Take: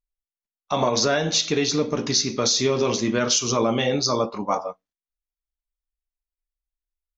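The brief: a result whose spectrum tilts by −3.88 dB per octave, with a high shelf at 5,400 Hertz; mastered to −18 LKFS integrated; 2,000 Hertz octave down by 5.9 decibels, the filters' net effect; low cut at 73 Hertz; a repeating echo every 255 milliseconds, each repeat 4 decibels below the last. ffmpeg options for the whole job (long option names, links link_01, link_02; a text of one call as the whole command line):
ffmpeg -i in.wav -af "highpass=73,equalizer=frequency=2000:width_type=o:gain=-7.5,highshelf=frequency=5400:gain=-5.5,aecho=1:1:255|510|765|1020|1275|1530|1785|2040|2295:0.631|0.398|0.25|0.158|0.0994|0.0626|0.0394|0.0249|0.0157,volume=4dB" out.wav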